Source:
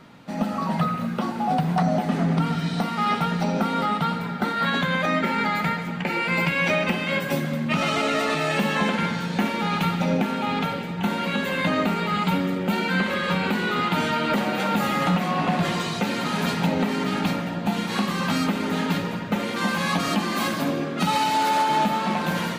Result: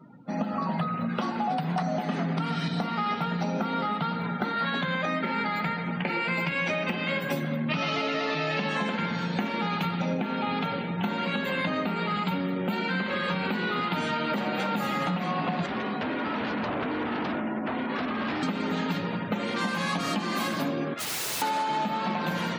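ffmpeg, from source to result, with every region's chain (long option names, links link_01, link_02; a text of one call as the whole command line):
ffmpeg -i in.wav -filter_complex "[0:a]asettb=1/sr,asplit=3[link_01][link_02][link_03];[link_01]atrim=end=1.094[link_04];[link_02]atrim=start=1.09:end=2.68,asetpts=PTS-STARTPTS,afade=type=in:duration=0.004:curve=qsin,afade=type=out:start_time=1.586:duration=0.004:curve=qsin,highpass=150,acontrast=25,equalizer=frequency=350:width=0.32:gain=-4.5[link_05];[link_03]atrim=start=2.676[link_06];[link_04][link_05]acrossfade=duration=0.004:curve1=hsin:curve2=qsin[link_07];[link_07][link_06]acrossfade=duration=0.004:curve1=qsin:curve2=hsin,asettb=1/sr,asplit=3[link_08][link_09][link_10];[link_08]atrim=end=7.684[link_11];[link_09]atrim=start=7.68:end=8.69,asetpts=PTS-STARTPTS,afade=type=in:duration=0.004:curve=qsin,afade=type=out:start_time=1.006:duration=0.004:curve=qsin,highshelf=frequency=7100:width_type=q:width=1.5:gain=-13.5,aecho=1:1:6.8:0.35,atrim=end_sample=44541[link_12];[link_10]atrim=start=8.686[link_13];[link_11][link_12]acrossfade=duration=0.004:curve1=hsin:curve2=qsin[link_14];[link_14][link_13]acrossfade=duration=0.004:curve1=qsin:curve2=hsin,asettb=1/sr,asplit=3[link_15][link_16][link_17];[link_15]atrim=end=15.664[link_18];[link_16]atrim=start=15.66:end=18.43,asetpts=PTS-STARTPTS,afade=type=in:duration=0.004:curve=qsin,afade=type=out:start_time=2.766:duration=0.004:curve=qsin,lowpass=2000,aeval=exprs='0.0668*(abs(mod(val(0)/0.0668+3,4)-2)-1)':channel_layout=same,afreqshift=45[link_19];[link_17]atrim=start=18.426[link_20];[link_18][link_19]acrossfade=duration=0.004:curve1=hsin:curve2=qsin[link_21];[link_21][link_20]acrossfade=duration=0.004:curve1=qsin:curve2=hsin,asettb=1/sr,asplit=3[link_22][link_23][link_24];[link_22]atrim=end=20.944[link_25];[link_23]atrim=start=20.94:end=21.42,asetpts=PTS-STARTPTS,afade=type=in:duration=0.004:curve=qsin,afade=type=out:start_time=0.476:duration=0.004:curve=qsin,highpass=frequency=1400:poles=1,aeval=exprs='(mod(20*val(0)+1,2)-1)/20':channel_layout=same[link_26];[link_24]atrim=start=21.416[link_27];[link_25][link_26]acrossfade=duration=0.004:curve1=hsin:curve2=qsin[link_28];[link_28][link_27]acrossfade=duration=0.004:curve1=qsin:curve2=hsin,highpass=95,afftdn=noise_reduction=26:noise_floor=-45,acompressor=threshold=-25dB:ratio=6" out.wav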